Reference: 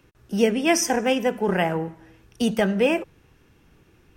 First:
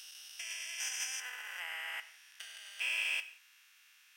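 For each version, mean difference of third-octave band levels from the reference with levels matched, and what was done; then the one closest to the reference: 18.5 dB: stepped spectrum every 0.4 s; negative-ratio compressor -29 dBFS, ratio -0.5; Bessel high-pass 2400 Hz, order 4; non-linear reverb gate 0.21 s falling, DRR 10.5 dB; gain +4 dB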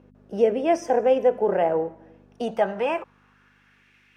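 7.0 dB: high shelf 3100 Hz +8 dB; in parallel at +2.5 dB: limiter -14.5 dBFS, peak gain reduction 9.5 dB; on the sum: hum 50 Hz, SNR 15 dB; band-pass sweep 560 Hz -> 2100 Hz, 2.21–3.93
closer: second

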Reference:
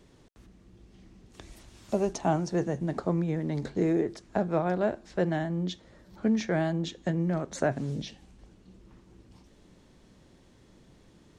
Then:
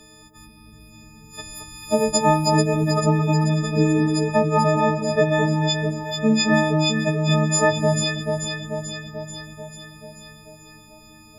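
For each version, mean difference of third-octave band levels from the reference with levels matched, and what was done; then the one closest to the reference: 10.0 dB: frequency quantiser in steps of 6 st; on a send: echo with dull and thin repeats by turns 0.219 s, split 1200 Hz, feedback 78%, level -3 dB; on the sum: gain +6.5 dB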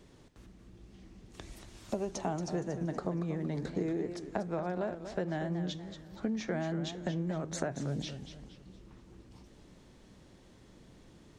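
5.5 dB: compressor 6:1, threshold -31 dBFS, peak gain reduction 10.5 dB; warbling echo 0.234 s, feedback 38%, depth 150 cents, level -10 dB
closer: second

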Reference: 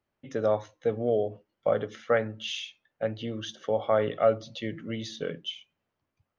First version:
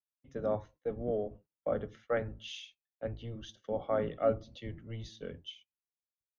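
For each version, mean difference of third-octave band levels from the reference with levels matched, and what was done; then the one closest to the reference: 3.0 dB: octaver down 1 oct, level -1 dB; high shelf 2100 Hz -5 dB; gate -49 dBFS, range -14 dB; three-band expander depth 40%; gain -8 dB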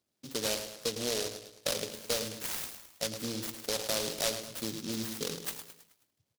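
17.5 dB: HPF 130 Hz; compressor 2.5:1, threshold -33 dBFS, peak gain reduction 11 dB; feedback echo 0.107 s, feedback 46%, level -9 dB; noise-modulated delay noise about 4400 Hz, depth 0.28 ms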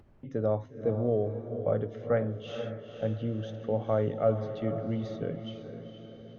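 7.5 dB: tilt -4 dB/oct; diffused feedback echo 0.473 s, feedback 46%, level -8.5 dB; upward compressor, threshold -35 dBFS; gain -7 dB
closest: first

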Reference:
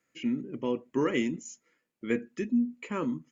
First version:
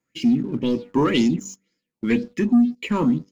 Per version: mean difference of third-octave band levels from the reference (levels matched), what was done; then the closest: 4.0 dB: de-hum 96.73 Hz, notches 14; sample leveller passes 2; EQ curve 200 Hz 0 dB, 1300 Hz -18 dB, 3800 Hz -8 dB; LFO bell 2 Hz 910–5300 Hz +16 dB; gain +8 dB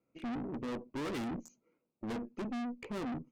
9.0 dB: Wiener smoothing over 25 samples; notch 3000 Hz, Q 17; dynamic EQ 250 Hz, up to +3 dB, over -38 dBFS, Q 1.3; tube stage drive 41 dB, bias 0.55; gain +5 dB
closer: first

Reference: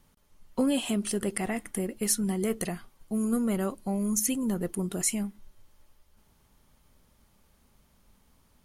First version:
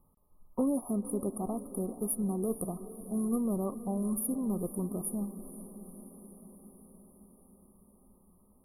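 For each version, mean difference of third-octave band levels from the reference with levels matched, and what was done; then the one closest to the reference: 9.0 dB: brick-wall FIR band-stop 1300–9500 Hz; on a send: diffused feedback echo 0.486 s, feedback 66%, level -14 dB; on the sum: gain -3.5 dB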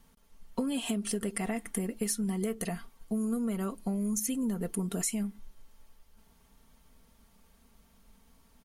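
2.5 dB: comb 4.4 ms, depth 51%; compressor 12:1, threshold -28 dBFS, peak gain reduction 9.5 dB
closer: second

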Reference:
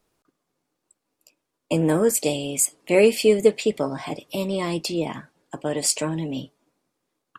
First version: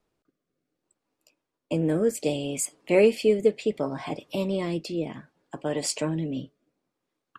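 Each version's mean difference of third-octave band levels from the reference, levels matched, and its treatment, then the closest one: 3.0 dB: high shelf 6400 Hz -11 dB; rotary speaker horn 0.65 Hz; gain -1 dB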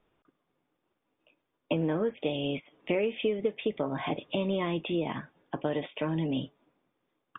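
7.5 dB: compressor 10:1, threshold -25 dBFS, peak gain reduction 15 dB; brick-wall FIR low-pass 3700 Hz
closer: first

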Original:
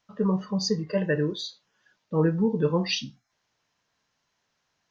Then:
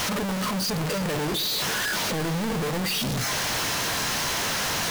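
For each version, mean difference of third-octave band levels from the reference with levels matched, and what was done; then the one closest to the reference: 20.0 dB: infinite clipping; on a send: split-band echo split 380 Hz, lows 0.122 s, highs 0.32 s, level -14.5 dB; on the sum: gain +2 dB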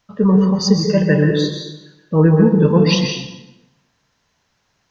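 6.5 dB: low shelf 150 Hz +8.5 dB; plate-style reverb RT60 0.97 s, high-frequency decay 0.8×, pre-delay 0.115 s, DRR 3 dB; gain +7.5 dB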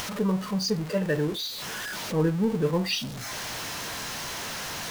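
11.0 dB: zero-crossing step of -30 dBFS; upward compressor, threshold -29 dBFS; gain -2.5 dB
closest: second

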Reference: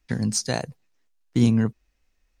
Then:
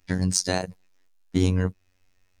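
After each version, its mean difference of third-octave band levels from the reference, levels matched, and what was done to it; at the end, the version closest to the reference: 4.0 dB: in parallel at -2 dB: compressor, threshold -31 dBFS, peak gain reduction 16.5 dB; on the sum: robotiser 92.1 Hz; gain +1.5 dB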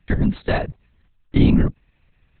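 6.5 dB: compressor 1.5:1, threshold -25 dBFS, peak gain reduction 4.5 dB; LPC vocoder at 8 kHz whisper; gain +8.5 dB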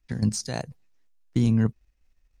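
2.5 dB: low shelf 110 Hz +9.5 dB; level quantiser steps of 10 dB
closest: third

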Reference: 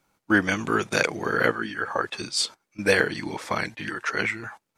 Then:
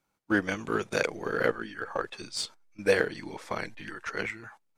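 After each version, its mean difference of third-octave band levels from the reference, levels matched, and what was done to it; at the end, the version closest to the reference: 2.5 dB: dynamic EQ 490 Hz, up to +5 dB, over -38 dBFS, Q 1.9; in parallel at -7 dB: backlash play -14.5 dBFS; on the sum: gain -9 dB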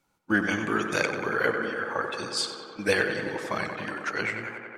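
5.0 dB: bin magnitudes rounded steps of 15 dB; tape echo 93 ms, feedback 88%, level -7 dB, low-pass 3200 Hz; gain -3.5 dB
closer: first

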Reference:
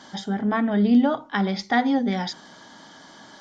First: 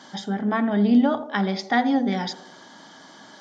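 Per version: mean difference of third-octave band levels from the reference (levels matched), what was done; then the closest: 1.0 dB: HPF 120 Hz; on a send: narrowing echo 84 ms, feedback 62%, band-pass 510 Hz, level -11.5 dB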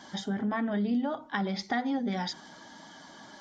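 3.0 dB: bin magnitudes rounded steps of 15 dB; compressor 3:1, threshold -26 dBFS, peak gain reduction 10 dB; gain -2.5 dB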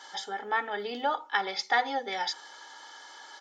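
7.0 dB: HPF 690 Hz 12 dB/oct; comb 2.3 ms, depth 62%; gain -1.5 dB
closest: first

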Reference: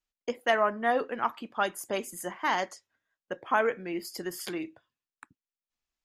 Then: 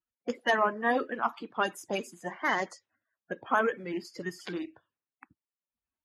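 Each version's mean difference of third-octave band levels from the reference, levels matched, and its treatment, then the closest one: 3.0 dB: bin magnitudes rounded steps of 30 dB; HPF 65 Hz; low-pass opened by the level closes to 1600 Hz, open at -27 dBFS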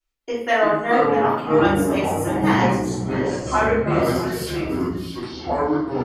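12.0 dB: echoes that change speed 0.199 s, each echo -7 st, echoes 3; echo 0.649 s -13.5 dB; shoebox room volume 170 m³, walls mixed, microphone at 3.2 m; gain -3.5 dB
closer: first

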